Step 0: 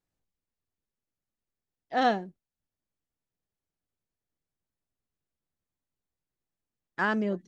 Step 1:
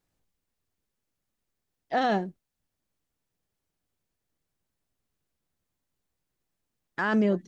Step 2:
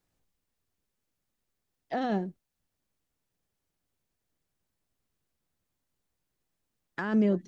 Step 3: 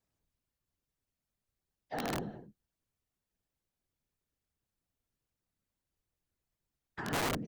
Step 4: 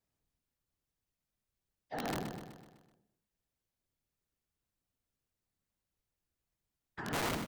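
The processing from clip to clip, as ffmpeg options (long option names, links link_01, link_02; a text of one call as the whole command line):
ffmpeg -i in.wav -af "alimiter=limit=-24dB:level=0:latency=1:release=25,volume=7dB" out.wav
ffmpeg -i in.wav -filter_complex "[0:a]acrossover=split=430[link_01][link_02];[link_02]acompressor=threshold=-33dB:ratio=6[link_03];[link_01][link_03]amix=inputs=2:normalize=0" out.wav
ffmpeg -i in.wav -filter_complex "[0:a]afftfilt=real='hypot(re,im)*cos(2*PI*random(0))':imag='hypot(re,im)*sin(2*PI*random(1))':win_size=512:overlap=0.75,asplit=2[link_01][link_02];[link_02]adelay=209.9,volume=-14dB,highshelf=frequency=4000:gain=-4.72[link_03];[link_01][link_03]amix=inputs=2:normalize=0,aeval=exprs='(mod(23.7*val(0)+1,2)-1)/23.7':channel_layout=same" out.wav
ffmpeg -i in.wav -af "aecho=1:1:126|252|378|504|630|756:0.376|0.199|0.106|0.056|0.0297|0.0157,volume=-2dB" out.wav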